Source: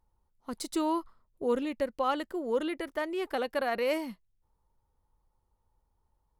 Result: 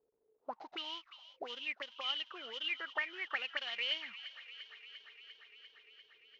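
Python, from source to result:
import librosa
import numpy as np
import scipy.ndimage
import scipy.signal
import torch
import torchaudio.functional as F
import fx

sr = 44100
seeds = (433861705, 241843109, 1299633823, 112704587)

p1 = fx.cvsd(x, sr, bps=32000)
p2 = fx.auto_wah(p1, sr, base_hz=430.0, top_hz=3100.0, q=14.0, full_db=-26.5, direction='up')
p3 = p2 + fx.echo_wet_highpass(p2, sr, ms=347, feedback_pct=76, hz=1700.0, wet_db=-13.0, dry=0)
y = p3 * librosa.db_to_amplitude(14.0)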